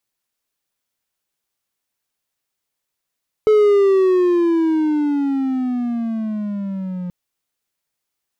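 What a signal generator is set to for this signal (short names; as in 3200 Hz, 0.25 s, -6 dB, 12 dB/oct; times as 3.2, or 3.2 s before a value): gliding synth tone triangle, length 3.63 s, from 433 Hz, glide -15.5 st, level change -14.5 dB, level -7 dB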